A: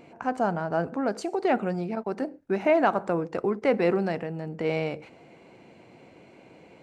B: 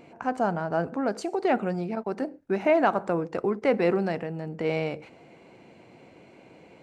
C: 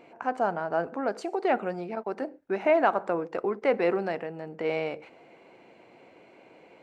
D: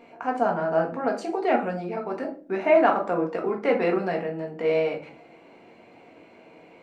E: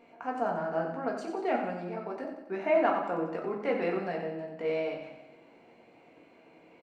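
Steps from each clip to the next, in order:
no audible change
tone controls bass -12 dB, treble -7 dB
simulated room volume 240 m³, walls furnished, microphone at 1.7 m
feedback delay 91 ms, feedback 53%, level -8 dB; trim -7.5 dB

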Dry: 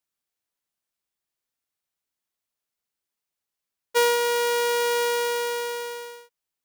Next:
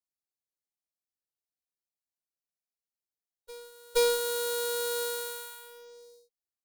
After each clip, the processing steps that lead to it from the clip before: FFT band-reject 860–3800 Hz; Chebyshev shaper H 2 -7 dB, 7 -14 dB, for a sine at -14 dBFS; reverse echo 472 ms -21.5 dB; trim -4 dB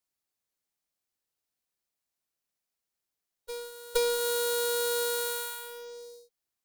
compression 5:1, threshold -32 dBFS, peak gain reduction 10.5 dB; trim +7 dB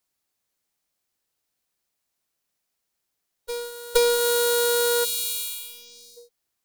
time-frequency box 5.05–6.17 s, 330–2200 Hz -23 dB; trim +7.5 dB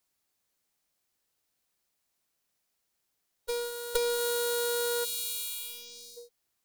compression 3:1, threshold -29 dBFS, peak gain reduction 11 dB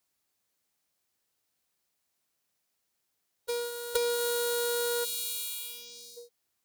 high-pass 50 Hz

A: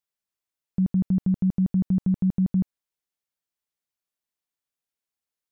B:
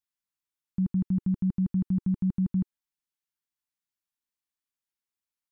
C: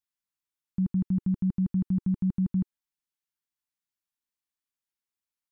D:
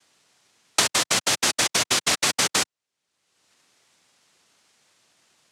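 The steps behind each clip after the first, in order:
high-order bell 540 Hz -13 dB 1 oct; trim -4 dB
no audible change
noise-vocoded speech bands 1; three bands compressed up and down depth 100%; trim +3.5 dB

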